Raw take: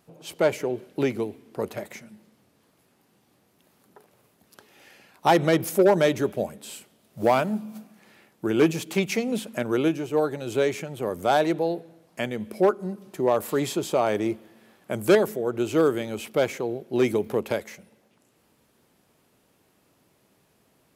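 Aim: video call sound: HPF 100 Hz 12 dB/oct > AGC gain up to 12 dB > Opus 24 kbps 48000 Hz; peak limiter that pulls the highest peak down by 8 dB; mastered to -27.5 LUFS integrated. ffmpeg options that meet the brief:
-af "alimiter=limit=-14dB:level=0:latency=1,highpass=100,dynaudnorm=m=12dB,volume=-6dB" -ar 48000 -c:a libopus -b:a 24k

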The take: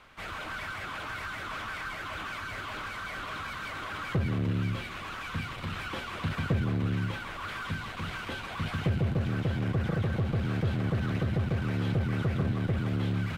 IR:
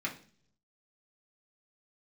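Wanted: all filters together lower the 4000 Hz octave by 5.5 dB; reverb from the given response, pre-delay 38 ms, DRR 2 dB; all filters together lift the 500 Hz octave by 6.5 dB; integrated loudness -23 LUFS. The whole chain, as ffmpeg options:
-filter_complex "[0:a]equalizer=f=500:t=o:g=8,equalizer=f=4k:t=o:g=-8,asplit=2[a][b];[1:a]atrim=start_sample=2205,adelay=38[c];[b][c]afir=irnorm=-1:irlink=0,volume=-6.5dB[d];[a][d]amix=inputs=2:normalize=0,volume=6.5dB"

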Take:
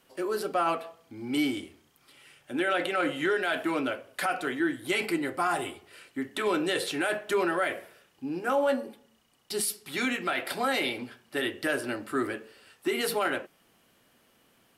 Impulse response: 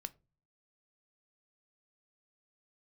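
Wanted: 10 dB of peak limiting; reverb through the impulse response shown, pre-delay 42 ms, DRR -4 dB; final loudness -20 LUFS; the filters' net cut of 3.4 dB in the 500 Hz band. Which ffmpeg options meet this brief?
-filter_complex "[0:a]equalizer=f=500:t=o:g=-4.5,alimiter=level_in=2dB:limit=-24dB:level=0:latency=1,volume=-2dB,asplit=2[a][b];[1:a]atrim=start_sample=2205,adelay=42[c];[b][c]afir=irnorm=-1:irlink=0,volume=7.5dB[d];[a][d]amix=inputs=2:normalize=0,volume=11dB"

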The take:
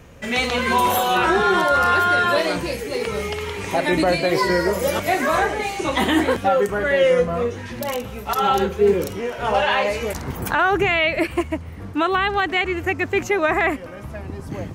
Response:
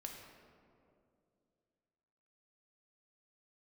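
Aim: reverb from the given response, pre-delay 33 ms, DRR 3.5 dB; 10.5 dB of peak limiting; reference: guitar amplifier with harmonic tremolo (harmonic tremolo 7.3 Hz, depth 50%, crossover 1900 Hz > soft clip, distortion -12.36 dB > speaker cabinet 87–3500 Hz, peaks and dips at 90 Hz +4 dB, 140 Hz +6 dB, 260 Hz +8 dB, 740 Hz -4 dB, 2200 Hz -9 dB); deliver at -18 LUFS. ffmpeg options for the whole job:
-filter_complex "[0:a]alimiter=limit=-16.5dB:level=0:latency=1,asplit=2[a][b];[1:a]atrim=start_sample=2205,adelay=33[c];[b][c]afir=irnorm=-1:irlink=0,volume=-0.5dB[d];[a][d]amix=inputs=2:normalize=0,acrossover=split=1900[e][f];[e]aeval=exprs='val(0)*(1-0.5/2+0.5/2*cos(2*PI*7.3*n/s))':c=same[g];[f]aeval=exprs='val(0)*(1-0.5/2-0.5/2*cos(2*PI*7.3*n/s))':c=same[h];[g][h]amix=inputs=2:normalize=0,asoftclip=threshold=-23.5dB,highpass=87,equalizer=f=90:t=q:w=4:g=4,equalizer=f=140:t=q:w=4:g=6,equalizer=f=260:t=q:w=4:g=8,equalizer=f=740:t=q:w=4:g=-4,equalizer=f=2.2k:t=q:w=4:g=-9,lowpass=f=3.5k:w=0.5412,lowpass=f=3.5k:w=1.3066,volume=11.5dB"

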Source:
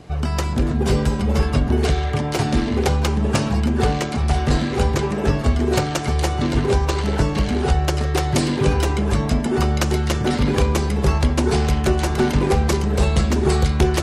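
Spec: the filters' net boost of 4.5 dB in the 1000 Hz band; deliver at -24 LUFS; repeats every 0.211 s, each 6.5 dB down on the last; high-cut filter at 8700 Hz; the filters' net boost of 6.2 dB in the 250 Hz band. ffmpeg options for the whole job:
-af "lowpass=8.7k,equalizer=f=250:t=o:g=7.5,equalizer=f=1k:t=o:g=5.5,aecho=1:1:211|422|633|844|1055|1266:0.473|0.222|0.105|0.0491|0.0231|0.0109,volume=-8dB"

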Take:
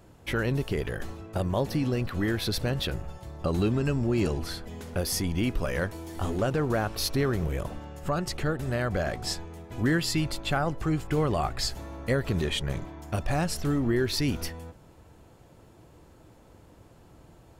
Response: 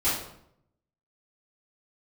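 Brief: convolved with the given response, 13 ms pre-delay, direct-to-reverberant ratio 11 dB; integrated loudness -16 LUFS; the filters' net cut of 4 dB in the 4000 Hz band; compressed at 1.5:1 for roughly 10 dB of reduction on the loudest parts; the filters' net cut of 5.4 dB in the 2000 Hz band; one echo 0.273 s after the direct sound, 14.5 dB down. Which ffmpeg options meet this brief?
-filter_complex "[0:a]equalizer=f=2k:t=o:g=-6.5,equalizer=f=4k:t=o:g=-3.5,acompressor=threshold=-50dB:ratio=1.5,aecho=1:1:273:0.188,asplit=2[a][b];[1:a]atrim=start_sample=2205,adelay=13[c];[b][c]afir=irnorm=-1:irlink=0,volume=-23dB[d];[a][d]amix=inputs=2:normalize=0,volume=22.5dB"

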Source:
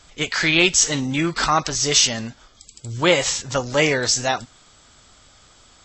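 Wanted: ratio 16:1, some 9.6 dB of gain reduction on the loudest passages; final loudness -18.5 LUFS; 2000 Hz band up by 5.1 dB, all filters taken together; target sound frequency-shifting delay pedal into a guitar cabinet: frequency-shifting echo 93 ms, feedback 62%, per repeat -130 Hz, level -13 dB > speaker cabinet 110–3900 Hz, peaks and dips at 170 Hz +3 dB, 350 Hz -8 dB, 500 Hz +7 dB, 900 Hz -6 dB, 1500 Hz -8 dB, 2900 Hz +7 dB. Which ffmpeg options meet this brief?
-filter_complex "[0:a]equalizer=f=2k:t=o:g=5.5,acompressor=threshold=-19dB:ratio=16,asplit=8[a][b][c][d][e][f][g][h];[b]adelay=93,afreqshift=-130,volume=-13dB[i];[c]adelay=186,afreqshift=-260,volume=-17.2dB[j];[d]adelay=279,afreqshift=-390,volume=-21.3dB[k];[e]adelay=372,afreqshift=-520,volume=-25.5dB[l];[f]adelay=465,afreqshift=-650,volume=-29.6dB[m];[g]adelay=558,afreqshift=-780,volume=-33.8dB[n];[h]adelay=651,afreqshift=-910,volume=-37.9dB[o];[a][i][j][k][l][m][n][o]amix=inputs=8:normalize=0,highpass=110,equalizer=f=170:t=q:w=4:g=3,equalizer=f=350:t=q:w=4:g=-8,equalizer=f=500:t=q:w=4:g=7,equalizer=f=900:t=q:w=4:g=-6,equalizer=f=1.5k:t=q:w=4:g=-8,equalizer=f=2.9k:t=q:w=4:g=7,lowpass=f=3.9k:w=0.5412,lowpass=f=3.9k:w=1.3066,volume=5dB"

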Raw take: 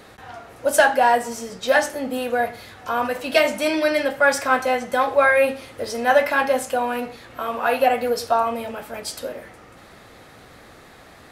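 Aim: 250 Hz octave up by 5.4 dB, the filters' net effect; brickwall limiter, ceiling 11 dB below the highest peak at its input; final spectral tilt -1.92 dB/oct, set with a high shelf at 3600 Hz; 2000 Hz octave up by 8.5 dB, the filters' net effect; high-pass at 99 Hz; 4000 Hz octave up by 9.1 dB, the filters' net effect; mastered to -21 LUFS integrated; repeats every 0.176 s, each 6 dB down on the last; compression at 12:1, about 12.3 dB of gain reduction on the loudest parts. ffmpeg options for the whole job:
-af "highpass=99,equalizer=f=250:t=o:g=6,equalizer=f=2k:t=o:g=8.5,highshelf=f=3.6k:g=6.5,equalizer=f=4k:t=o:g=4.5,acompressor=threshold=-18dB:ratio=12,alimiter=limit=-17dB:level=0:latency=1,aecho=1:1:176|352|528|704|880|1056:0.501|0.251|0.125|0.0626|0.0313|0.0157,volume=4dB"

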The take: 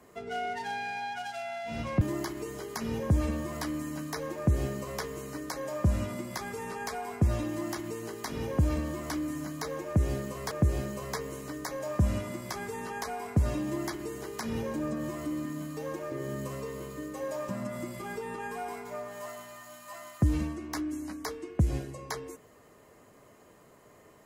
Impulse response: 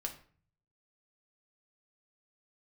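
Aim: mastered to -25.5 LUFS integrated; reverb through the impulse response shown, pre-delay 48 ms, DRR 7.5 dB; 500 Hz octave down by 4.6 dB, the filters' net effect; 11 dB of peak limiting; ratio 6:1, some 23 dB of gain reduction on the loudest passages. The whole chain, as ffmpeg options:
-filter_complex "[0:a]equalizer=f=500:t=o:g=-6,acompressor=threshold=-46dB:ratio=6,alimiter=level_in=17dB:limit=-24dB:level=0:latency=1,volume=-17dB,asplit=2[a][b];[1:a]atrim=start_sample=2205,adelay=48[c];[b][c]afir=irnorm=-1:irlink=0,volume=-7dB[d];[a][d]amix=inputs=2:normalize=0,volume=24.5dB"

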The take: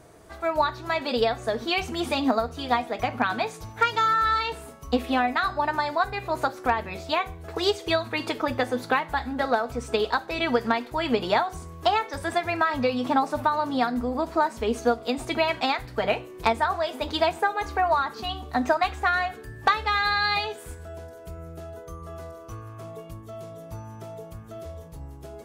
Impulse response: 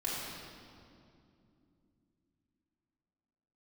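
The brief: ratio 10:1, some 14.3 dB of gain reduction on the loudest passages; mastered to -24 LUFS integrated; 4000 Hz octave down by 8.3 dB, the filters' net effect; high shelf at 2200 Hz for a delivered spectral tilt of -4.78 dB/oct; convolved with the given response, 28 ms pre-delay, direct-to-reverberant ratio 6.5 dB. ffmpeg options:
-filter_complex "[0:a]highshelf=f=2.2k:g=-7.5,equalizer=f=4k:t=o:g=-3.5,acompressor=threshold=-33dB:ratio=10,asplit=2[a][b];[1:a]atrim=start_sample=2205,adelay=28[c];[b][c]afir=irnorm=-1:irlink=0,volume=-11.5dB[d];[a][d]amix=inputs=2:normalize=0,volume=13dB"

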